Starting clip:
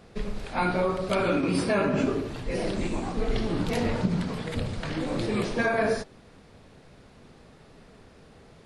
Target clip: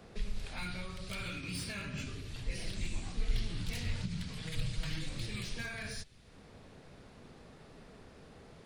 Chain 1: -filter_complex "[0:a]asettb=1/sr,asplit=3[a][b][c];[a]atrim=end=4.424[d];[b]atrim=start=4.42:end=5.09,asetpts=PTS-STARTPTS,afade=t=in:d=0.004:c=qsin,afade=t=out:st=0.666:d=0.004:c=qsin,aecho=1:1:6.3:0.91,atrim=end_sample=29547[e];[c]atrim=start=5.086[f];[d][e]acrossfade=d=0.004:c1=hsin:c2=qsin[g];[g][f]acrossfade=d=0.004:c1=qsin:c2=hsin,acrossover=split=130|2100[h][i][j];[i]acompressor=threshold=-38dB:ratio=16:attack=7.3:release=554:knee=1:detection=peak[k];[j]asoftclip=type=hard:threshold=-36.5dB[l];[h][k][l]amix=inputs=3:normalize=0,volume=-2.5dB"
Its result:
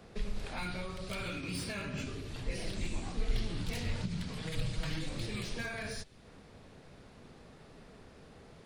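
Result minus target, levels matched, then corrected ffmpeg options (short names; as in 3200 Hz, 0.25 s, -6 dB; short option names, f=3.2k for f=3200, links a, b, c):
compressor: peak gain reduction -7 dB
-filter_complex "[0:a]asettb=1/sr,asplit=3[a][b][c];[a]atrim=end=4.424[d];[b]atrim=start=4.42:end=5.09,asetpts=PTS-STARTPTS,afade=t=in:d=0.004:c=qsin,afade=t=out:st=0.666:d=0.004:c=qsin,aecho=1:1:6.3:0.91,atrim=end_sample=29547[e];[c]atrim=start=5.086[f];[d][e]acrossfade=d=0.004:c1=hsin:c2=qsin[g];[g][f]acrossfade=d=0.004:c1=qsin:c2=hsin,acrossover=split=130|2100[h][i][j];[i]acompressor=threshold=-45.5dB:ratio=16:attack=7.3:release=554:knee=1:detection=peak[k];[j]asoftclip=type=hard:threshold=-36.5dB[l];[h][k][l]amix=inputs=3:normalize=0,volume=-2.5dB"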